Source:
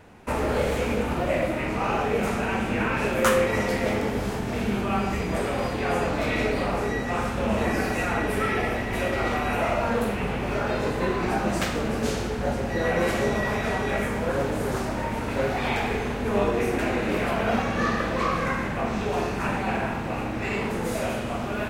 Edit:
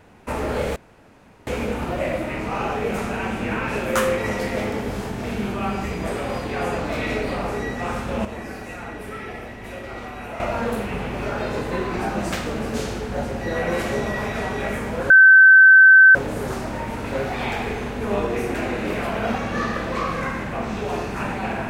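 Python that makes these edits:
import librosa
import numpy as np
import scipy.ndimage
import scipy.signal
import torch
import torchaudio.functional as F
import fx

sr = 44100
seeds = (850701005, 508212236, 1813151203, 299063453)

y = fx.edit(x, sr, fx.insert_room_tone(at_s=0.76, length_s=0.71),
    fx.clip_gain(start_s=7.54, length_s=2.15, db=-8.5),
    fx.insert_tone(at_s=14.39, length_s=1.05, hz=1540.0, db=-6.0), tone=tone)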